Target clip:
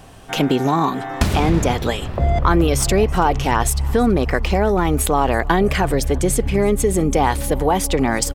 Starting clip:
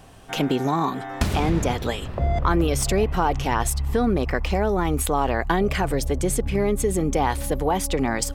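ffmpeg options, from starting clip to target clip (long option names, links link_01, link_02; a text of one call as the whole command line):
ffmpeg -i in.wav -af "aecho=1:1:329|658|987:0.0668|0.0327|0.016,volume=5dB" out.wav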